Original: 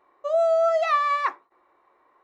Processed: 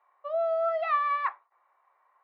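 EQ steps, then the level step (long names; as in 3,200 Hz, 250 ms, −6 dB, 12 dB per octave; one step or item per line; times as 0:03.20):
high-pass filter 680 Hz 24 dB per octave
elliptic low-pass filter 5,800 Hz, stop band 40 dB
high-frequency loss of the air 380 metres
−1.5 dB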